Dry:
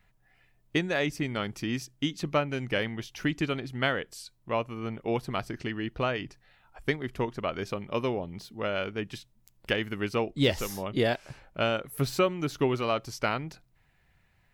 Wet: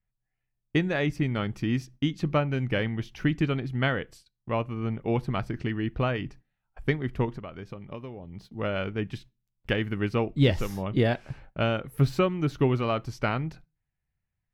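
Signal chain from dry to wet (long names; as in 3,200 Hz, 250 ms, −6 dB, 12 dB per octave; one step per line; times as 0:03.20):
bass and treble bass +8 dB, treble −9 dB
0:07.34–0:08.54: downward compressor 16 to 1, threshold −35 dBFS, peak gain reduction 14.5 dB
noise gate −47 dBFS, range −23 dB
on a send: convolution reverb RT60 0.30 s, pre-delay 3 ms, DRR 16 dB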